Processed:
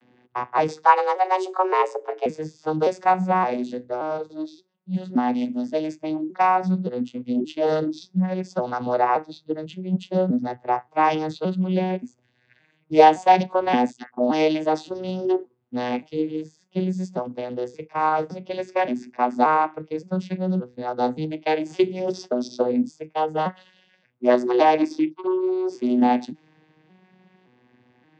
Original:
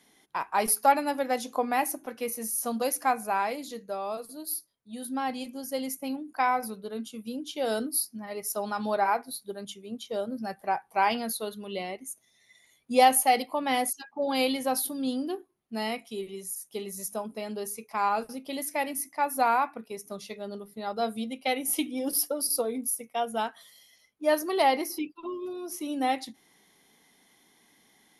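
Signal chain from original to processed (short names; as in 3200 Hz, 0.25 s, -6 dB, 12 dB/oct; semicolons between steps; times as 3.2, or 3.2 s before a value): arpeggiated vocoder major triad, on B2, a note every 0.572 s; 0.85–2.26 frequency shift +190 Hz; low-pass opened by the level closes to 2900 Hz, open at -26 dBFS; gain +8.5 dB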